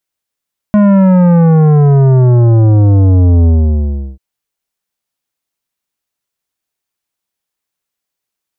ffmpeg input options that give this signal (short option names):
-f lavfi -i "aevalsrc='0.531*clip((3.44-t)/0.72,0,1)*tanh(3.98*sin(2*PI*210*3.44/log(65/210)*(exp(log(65/210)*t/3.44)-1)))/tanh(3.98)':d=3.44:s=44100"